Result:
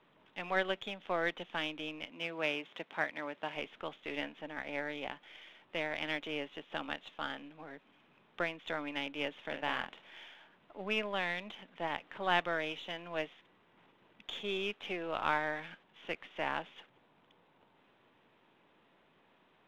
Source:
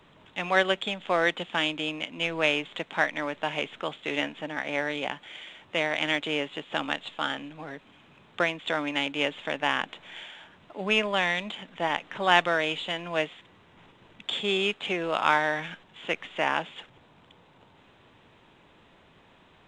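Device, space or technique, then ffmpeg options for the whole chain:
crystal radio: -filter_complex "[0:a]lowshelf=frequency=81:gain=10,asettb=1/sr,asplit=3[link_01][link_02][link_03];[link_01]atrim=end=9.434[link_04];[link_02]atrim=start=9.43:end=10.34,asetpts=PTS-STARTPTS,afade=type=in:duration=0.004:curve=qsin,afade=type=out:start_time=0.906:duration=0.004:curve=qsin,asplit=2[link_05][link_06];[link_06]adelay=47,volume=-7dB[link_07];[link_05][link_07]amix=inputs=2:normalize=0,atrim=end_sample=40131[link_08];[link_03]atrim=start=10.336[link_09];[link_04][link_08]acrossfade=duration=0.004:curve1=hsin:curve2=qsin[link_10];[link_10][link_09]acrossfade=duration=0.004:curve1=qsin:curve2=hsin,highpass=210,lowpass=3500,aeval=exprs='if(lt(val(0),0),0.708*val(0),val(0))':channel_layout=same,asettb=1/sr,asplit=3[link_11][link_12][link_13];[link_11]atrim=end=2.104[link_14];[link_12]atrim=start=2.1:end=3.56,asetpts=PTS-STARTPTS,afade=type=in:duration=0.004:curve=qsin,afade=type=out:start_time=1.456:duration=0.004:curve=qsin,highpass=frequency=120:poles=1[link_15];[link_13]atrim=start=3.556[link_16];[link_14][link_15]acrossfade=duration=0.004:curve1=hsin:curve2=qsin[link_17];[link_17][link_16]acrossfade=duration=0.004:curve1=qsin:curve2=hsin,volume=-8dB"

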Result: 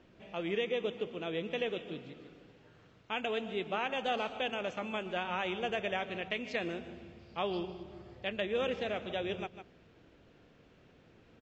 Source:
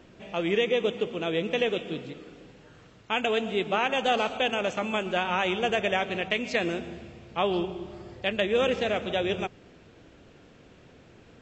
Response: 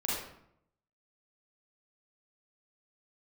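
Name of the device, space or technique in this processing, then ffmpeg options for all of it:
ducked delay: -filter_complex "[0:a]lowpass=5400,asettb=1/sr,asplit=3[link_01][link_02][link_03];[link_01]atrim=end=7.194[link_04];[link_02]atrim=start=7.19:end=7.83,asetpts=PTS-STARTPTS,afade=type=in:duration=0.004:curve=qsin,afade=type=out:start_time=0.636:duration=0.004:curve=qsin,equalizer=frequency=4800:width_type=o:width=0.32:gain=13[link_05];[link_03]atrim=start=7.826[link_06];[link_04][link_05]acrossfade=duration=0.004:curve1=hsin:curve2=qsin[link_07];[link_07][link_06]acrossfade=duration=0.004:curve1=qsin:curve2=hsin,asplit=3[link_08][link_09][link_10];[link_09]adelay=151,volume=-8.5dB[link_11];[link_10]apad=whole_len=509882[link_12];[link_11][link_12]sidechaincompress=threshold=-39dB:ratio=8:attack=6.4:release=150[link_13];[link_08][link_13]amix=inputs=2:normalize=0,volume=-8.5dB"

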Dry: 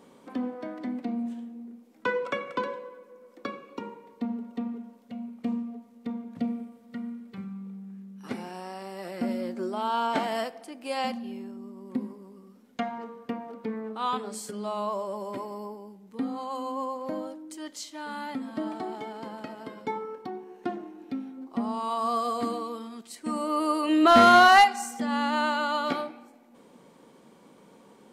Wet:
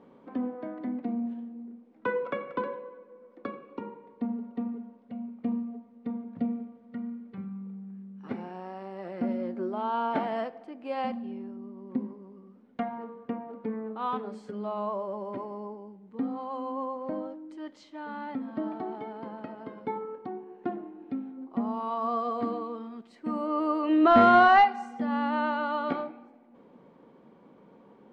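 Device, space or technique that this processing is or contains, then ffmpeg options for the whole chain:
phone in a pocket: -af "lowpass=3200,highshelf=frequency=2000:gain=-10.5"

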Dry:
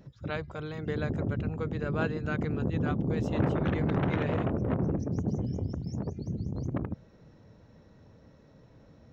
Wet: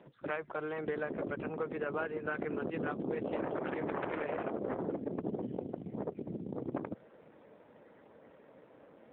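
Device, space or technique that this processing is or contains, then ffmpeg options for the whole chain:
voicemail: -af "highpass=390,lowpass=2800,acompressor=threshold=-38dB:ratio=6,volume=6.5dB" -ar 8000 -c:a libopencore_amrnb -b:a 7400

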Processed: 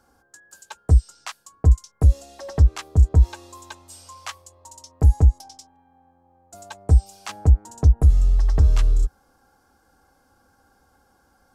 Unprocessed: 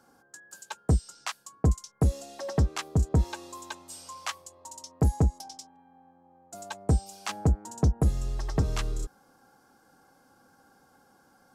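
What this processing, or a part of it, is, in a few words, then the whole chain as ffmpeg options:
car stereo with a boomy subwoofer: -af "lowshelf=frequency=100:width_type=q:width=1.5:gain=12.5,alimiter=limit=-6dB:level=0:latency=1:release=30"

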